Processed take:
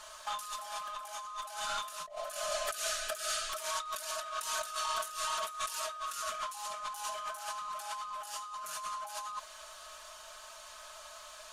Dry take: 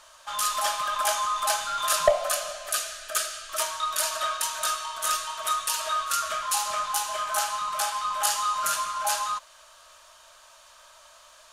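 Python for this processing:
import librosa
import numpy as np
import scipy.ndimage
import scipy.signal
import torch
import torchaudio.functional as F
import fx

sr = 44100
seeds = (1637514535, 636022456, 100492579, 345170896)

y = x + 0.65 * np.pad(x, (int(4.7 * sr / 1000.0), 0))[:len(x)]
y = fx.over_compress(y, sr, threshold_db=-34.0, ratio=-1.0)
y = F.gain(torch.from_numpy(y), -6.0).numpy()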